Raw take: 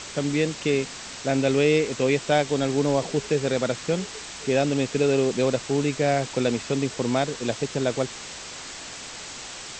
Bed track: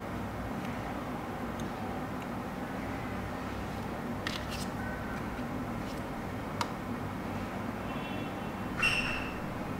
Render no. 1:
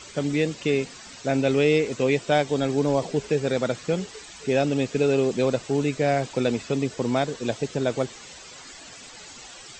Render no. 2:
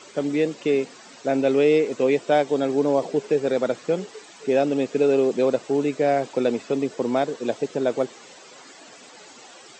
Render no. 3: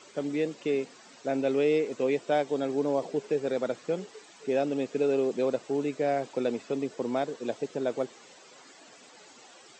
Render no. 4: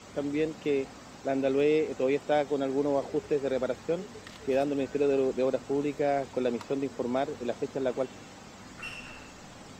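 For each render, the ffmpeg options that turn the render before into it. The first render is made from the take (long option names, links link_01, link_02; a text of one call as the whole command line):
ffmpeg -i in.wav -af "afftdn=noise_reduction=11:noise_floor=-38" out.wav
ffmpeg -i in.wav -af "highpass=290,tiltshelf=frequency=1200:gain=5" out.wav
ffmpeg -i in.wav -af "volume=-7dB" out.wav
ffmpeg -i in.wav -i bed.wav -filter_complex "[1:a]volume=-12dB[link_01];[0:a][link_01]amix=inputs=2:normalize=0" out.wav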